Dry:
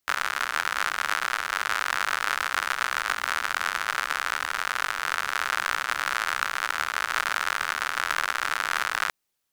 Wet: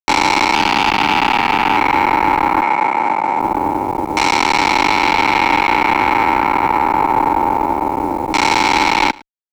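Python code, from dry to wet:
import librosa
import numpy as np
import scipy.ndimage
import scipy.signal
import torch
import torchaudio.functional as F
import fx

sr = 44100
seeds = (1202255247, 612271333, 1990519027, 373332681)

p1 = fx.self_delay(x, sr, depth_ms=0.27, at=(0.54, 1.77))
p2 = fx.vowel_filter(p1, sr, vowel='u')
p3 = fx.low_shelf(p2, sr, hz=240.0, db=-4.0)
p4 = fx.fuzz(p3, sr, gain_db=66.0, gate_db=-58.0)
p5 = fx.filter_lfo_lowpass(p4, sr, shape='saw_down', hz=0.24, low_hz=540.0, high_hz=6300.0, q=1.0)
p6 = fx.quant_dither(p5, sr, seeds[0], bits=6, dither='none')
p7 = p5 + F.gain(torch.from_numpy(p6), -5.0).numpy()
p8 = fx.cabinet(p7, sr, low_hz=190.0, low_slope=12, high_hz=8600.0, hz=(290.0, 430.0, 1100.0, 2200.0), db=(-7, -5, -3, 6), at=(2.62, 3.4))
y = p8 + fx.echo_single(p8, sr, ms=109, db=-23.5, dry=0)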